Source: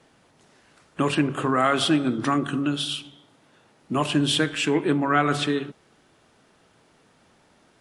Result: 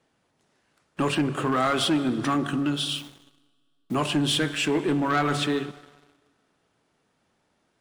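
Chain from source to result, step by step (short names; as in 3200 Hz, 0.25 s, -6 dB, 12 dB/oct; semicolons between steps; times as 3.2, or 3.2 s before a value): 2.89–3.95 level-crossing sampler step -44 dBFS; plate-style reverb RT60 2.4 s, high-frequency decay 0.85×, pre-delay 95 ms, DRR 19.5 dB; sample leveller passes 2; gain -7.5 dB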